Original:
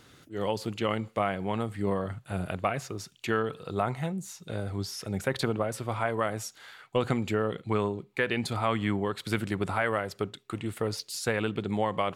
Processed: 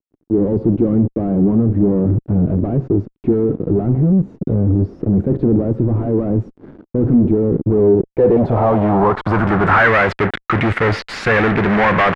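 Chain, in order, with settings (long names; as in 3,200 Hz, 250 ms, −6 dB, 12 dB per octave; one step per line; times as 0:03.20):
fuzz pedal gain 46 dB, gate −46 dBFS
low-pass filter sweep 310 Hz → 1,900 Hz, 0:07.64–0:09.96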